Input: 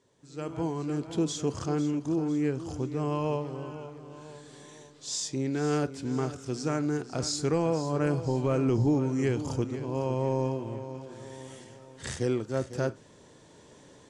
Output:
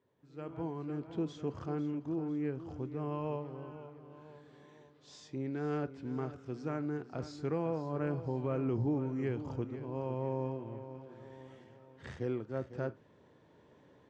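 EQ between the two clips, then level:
high-pass filter 45 Hz
low-pass filter 2,400 Hz 12 dB per octave
−7.5 dB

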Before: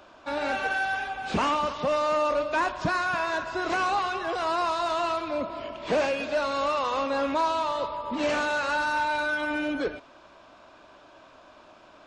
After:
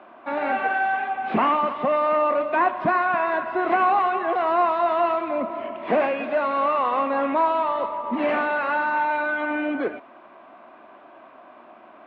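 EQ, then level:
loudspeaker in its box 170–2,800 Hz, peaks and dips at 230 Hz +9 dB, 360 Hz +6 dB, 720 Hz +9 dB, 1,100 Hz +6 dB, 2,000 Hz +6 dB
0.0 dB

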